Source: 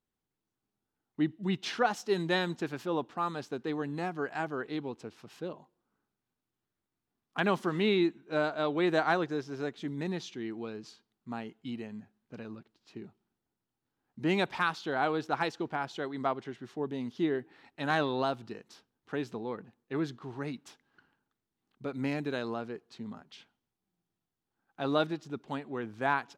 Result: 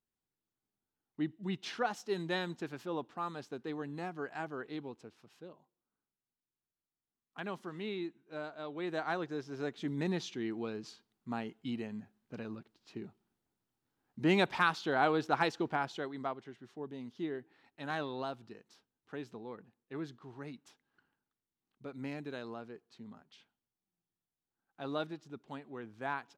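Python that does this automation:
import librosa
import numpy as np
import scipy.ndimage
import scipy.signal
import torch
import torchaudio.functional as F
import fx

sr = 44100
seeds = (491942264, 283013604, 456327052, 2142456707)

y = fx.gain(x, sr, db=fx.line((4.82, -6.0), (5.51, -12.5), (8.64, -12.5), (9.95, 0.5), (15.77, 0.5), (16.39, -8.5)))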